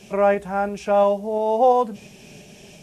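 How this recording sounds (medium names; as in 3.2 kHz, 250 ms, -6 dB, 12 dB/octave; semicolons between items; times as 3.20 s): tremolo saw up 2.9 Hz, depth 30%; a quantiser's noise floor 10-bit, dither triangular; Vorbis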